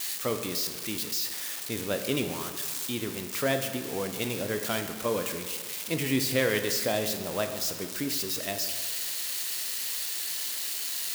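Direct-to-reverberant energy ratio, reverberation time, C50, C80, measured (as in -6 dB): 6.0 dB, 1.7 s, 8.0 dB, 9.5 dB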